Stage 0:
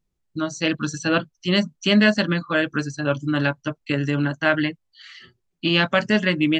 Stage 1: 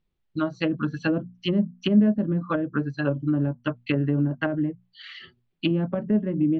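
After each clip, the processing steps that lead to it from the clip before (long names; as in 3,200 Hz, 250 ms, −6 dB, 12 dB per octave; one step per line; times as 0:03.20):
treble cut that deepens with the level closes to 360 Hz, closed at −17 dBFS
high shelf with overshoot 5,000 Hz −12 dB, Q 1.5
mains-hum notches 60/120/180/240 Hz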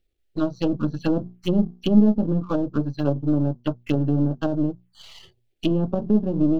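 gain on one half-wave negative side −7 dB
dynamic equaliser 2,200 Hz, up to −7 dB, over −47 dBFS, Q 1.2
phaser swept by the level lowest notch 170 Hz, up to 2,000 Hz, full sweep at −28 dBFS
level +5.5 dB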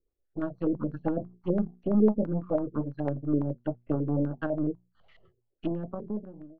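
fade-out on the ending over 1.18 s
rotating-speaker cabinet horn 8 Hz, later 0.6 Hz, at 0:02.10
low-pass on a step sequencer 12 Hz 440–1,800 Hz
level −7 dB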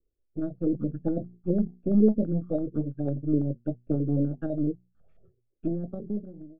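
in parallel at −11 dB: decimation without filtering 10×
on the sum: moving average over 44 samples
tape wow and flutter 28 cents
level +1 dB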